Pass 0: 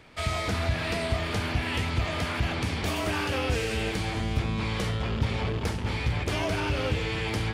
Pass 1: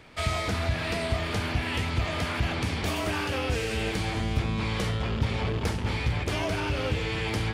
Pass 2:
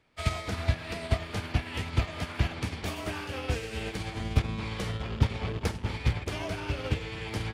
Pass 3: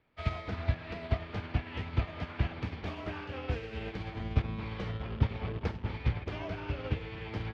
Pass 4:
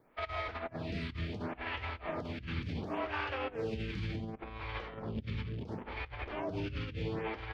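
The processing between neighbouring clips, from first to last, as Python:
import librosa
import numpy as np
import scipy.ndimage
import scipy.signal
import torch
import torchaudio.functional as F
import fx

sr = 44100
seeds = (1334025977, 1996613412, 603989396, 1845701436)

y1 = fx.rider(x, sr, range_db=10, speed_s=0.5)
y2 = fx.upward_expand(y1, sr, threshold_db=-36.0, expansion=2.5)
y2 = F.gain(torch.from_numpy(y2), 4.0).numpy()
y3 = fx.air_absorb(y2, sr, metres=250.0)
y3 = F.gain(torch.from_numpy(y3), -3.0).numpy()
y4 = fx.over_compress(y3, sr, threshold_db=-41.0, ratio=-1.0)
y4 = fx.stagger_phaser(y4, sr, hz=0.7)
y4 = F.gain(torch.from_numpy(y4), 4.5).numpy()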